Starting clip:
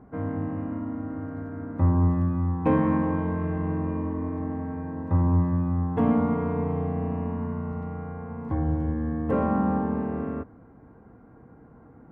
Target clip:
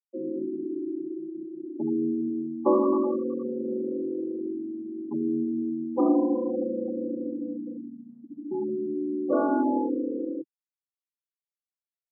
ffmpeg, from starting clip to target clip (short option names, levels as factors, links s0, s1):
-af "afftfilt=real='re*gte(hypot(re,im),0.112)':imag='im*gte(hypot(re,im),0.112)':win_size=1024:overlap=0.75,highpass=f=190:t=q:w=0.5412,highpass=f=190:t=q:w=1.307,lowpass=f=2100:t=q:w=0.5176,lowpass=f=2100:t=q:w=0.7071,lowpass=f=2100:t=q:w=1.932,afreqshift=61,volume=1.19"